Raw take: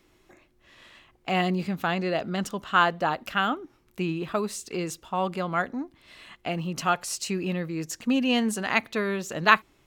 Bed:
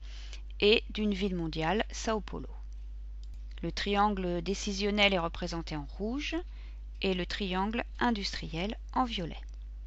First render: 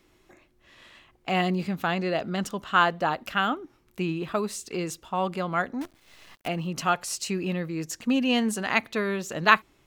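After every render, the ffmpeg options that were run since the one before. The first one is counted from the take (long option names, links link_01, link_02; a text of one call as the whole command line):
ffmpeg -i in.wav -filter_complex "[0:a]asettb=1/sr,asplit=3[link_01][link_02][link_03];[link_01]atrim=end=5.814[link_04];[link_02]atrim=start=5.81:end=6.48,asetpts=PTS-STARTPTS,afade=type=in:duration=0.004:curve=qsin,afade=type=out:start_time=0.666:duration=0.004:curve=qsin,acrusher=bits=7:dc=4:mix=0:aa=0.000001[link_05];[link_03]atrim=start=6.476[link_06];[link_04][link_05]acrossfade=duration=0.004:curve1=hsin:curve2=qsin[link_07];[link_07][link_06]acrossfade=duration=0.004:curve1=qsin:curve2=hsin" out.wav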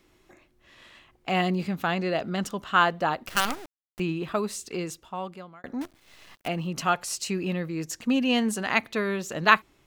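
ffmpeg -i in.wav -filter_complex "[0:a]asettb=1/sr,asplit=3[link_01][link_02][link_03];[link_01]atrim=end=3.284[link_04];[link_02]atrim=start=3.28:end=4,asetpts=PTS-STARTPTS,afade=type=in:duration=0.004:curve=qsin,afade=type=out:start_time=0.716:duration=0.004:curve=qsin,acrusher=bits=4:dc=4:mix=0:aa=0.000001[link_05];[link_03]atrim=start=3.996[link_06];[link_04][link_05]acrossfade=duration=0.004:curve1=hsin:curve2=qsin[link_07];[link_07][link_06]acrossfade=duration=0.004:curve1=qsin:curve2=hsin,asplit=2[link_08][link_09];[link_08]atrim=end=5.64,asetpts=PTS-STARTPTS,afade=type=out:start_time=4.67:duration=0.97[link_10];[link_09]atrim=start=5.64,asetpts=PTS-STARTPTS,afade=type=in:duration=0.004:curve=hsin[link_11];[link_10][link_11]concat=n=2:v=0:a=1" out.wav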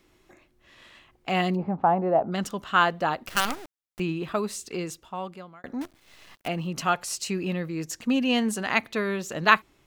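ffmpeg -i in.wav -filter_complex "[0:a]asplit=3[link_01][link_02][link_03];[link_01]afade=type=out:start_time=1.55:duration=0.02[link_04];[link_02]lowpass=frequency=840:width_type=q:width=3.8,afade=type=in:start_time=1.55:duration=0.02,afade=type=out:start_time=2.31:duration=0.02[link_05];[link_03]afade=type=in:start_time=2.31:duration=0.02[link_06];[link_04][link_05][link_06]amix=inputs=3:normalize=0" out.wav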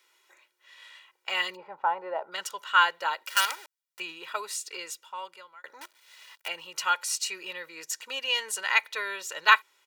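ffmpeg -i in.wav -af "highpass=1100,aecho=1:1:2.1:0.82" out.wav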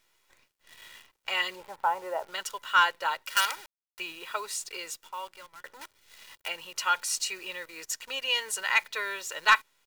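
ffmpeg -i in.wav -af "asoftclip=type=tanh:threshold=-10dB,acrusher=bits=9:dc=4:mix=0:aa=0.000001" out.wav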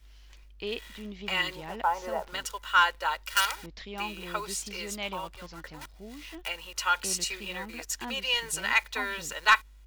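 ffmpeg -i in.wav -i bed.wav -filter_complex "[1:a]volume=-10.5dB[link_01];[0:a][link_01]amix=inputs=2:normalize=0" out.wav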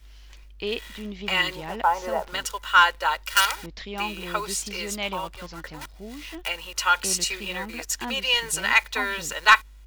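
ffmpeg -i in.wav -af "volume=5.5dB" out.wav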